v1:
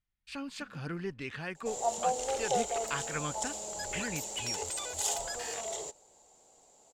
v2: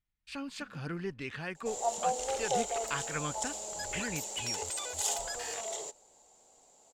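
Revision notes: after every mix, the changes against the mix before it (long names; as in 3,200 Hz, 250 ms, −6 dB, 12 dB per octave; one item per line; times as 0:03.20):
second sound: add low-shelf EQ 180 Hz −11.5 dB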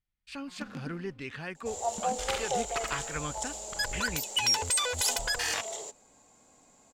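first sound +12.0 dB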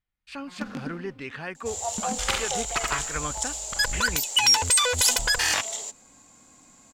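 speech: add parametric band 930 Hz +6 dB 2.8 octaves
first sound +7.5 dB
second sound: add tilt shelving filter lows −8 dB, about 790 Hz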